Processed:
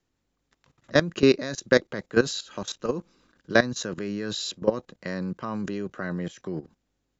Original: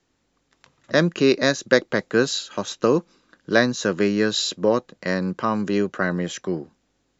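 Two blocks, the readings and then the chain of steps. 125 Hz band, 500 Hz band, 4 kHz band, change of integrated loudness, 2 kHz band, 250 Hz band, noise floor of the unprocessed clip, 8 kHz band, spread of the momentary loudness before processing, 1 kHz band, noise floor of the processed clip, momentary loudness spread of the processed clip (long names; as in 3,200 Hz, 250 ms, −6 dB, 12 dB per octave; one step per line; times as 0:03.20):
−4.5 dB, −4.5 dB, −5.5 dB, −5.0 dB, −4.5 dB, −5.0 dB, −70 dBFS, can't be measured, 8 LU, −7.0 dB, −78 dBFS, 13 LU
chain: output level in coarse steps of 16 dB
low-shelf EQ 130 Hz +8 dB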